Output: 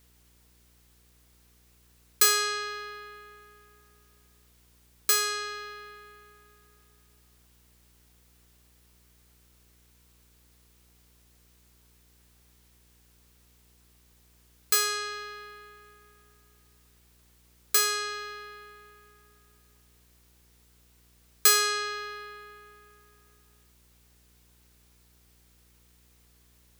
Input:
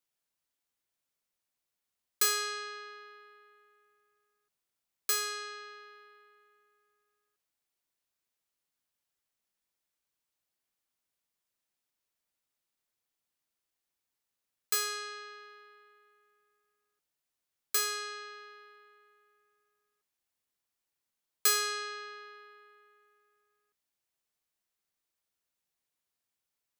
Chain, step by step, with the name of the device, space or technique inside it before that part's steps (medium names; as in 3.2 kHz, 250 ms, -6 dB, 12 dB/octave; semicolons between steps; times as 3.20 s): video cassette with head-switching buzz (mains buzz 60 Hz, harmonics 8, -70 dBFS -7 dB/octave; white noise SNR 29 dB); trim +6.5 dB